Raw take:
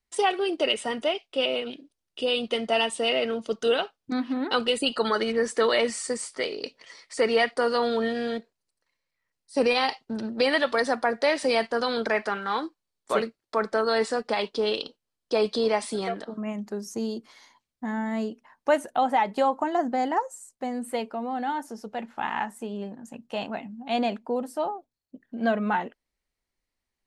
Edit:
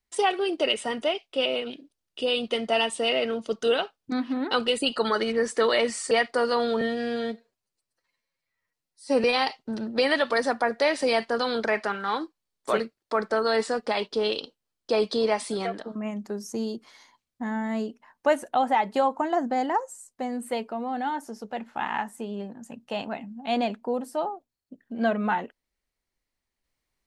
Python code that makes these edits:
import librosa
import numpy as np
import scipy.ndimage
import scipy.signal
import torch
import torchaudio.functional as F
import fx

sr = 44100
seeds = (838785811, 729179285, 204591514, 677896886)

y = fx.edit(x, sr, fx.cut(start_s=6.11, length_s=1.23),
    fx.stretch_span(start_s=8.04, length_s=1.62, factor=1.5), tone=tone)